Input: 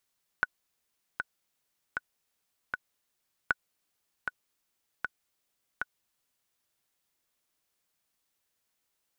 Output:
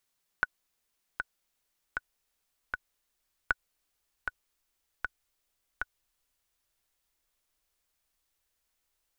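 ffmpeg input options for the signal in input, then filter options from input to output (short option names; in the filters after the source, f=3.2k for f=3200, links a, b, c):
-f lavfi -i "aevalsrc='pow(10,(-11.5-6.5*gte(mod(t,4*60/78),60/78))/20)*sin(2*PI*1480*mod(t,60/78))*exp(-6.91*mod(t,60/78)/0.03)':d=6.15:s=44100"
-af "asubboost=boost=8:cutoff=54"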